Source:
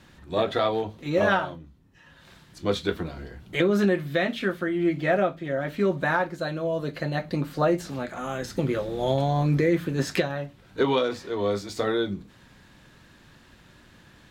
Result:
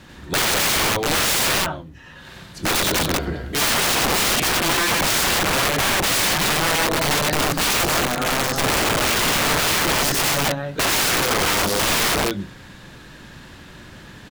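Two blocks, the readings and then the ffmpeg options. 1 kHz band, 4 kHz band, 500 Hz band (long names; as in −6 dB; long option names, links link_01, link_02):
+8.5 dB, +17.5 dB, 0.0 dB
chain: -af "aecho=1:1:90.38|271.1:1|0.501,aeval=exprs='(mod(14.1*val(0)+1,2)-1)/14.1':channel_layout=same,volume=8.5dB"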